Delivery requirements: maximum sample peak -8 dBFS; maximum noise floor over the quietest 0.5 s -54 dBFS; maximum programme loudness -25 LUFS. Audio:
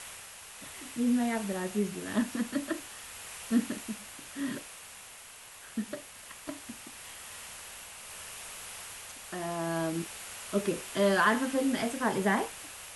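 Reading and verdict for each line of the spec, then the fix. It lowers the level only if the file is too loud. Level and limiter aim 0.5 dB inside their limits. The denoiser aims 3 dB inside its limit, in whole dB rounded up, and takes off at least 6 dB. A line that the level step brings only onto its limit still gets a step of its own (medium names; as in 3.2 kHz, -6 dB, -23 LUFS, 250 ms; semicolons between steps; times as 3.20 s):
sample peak -12.5 dBFS: pass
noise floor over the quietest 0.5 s -50 dBFS: fail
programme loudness -33.0 LUFS: pass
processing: noise reduction 7 dB, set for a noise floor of -50 dBFS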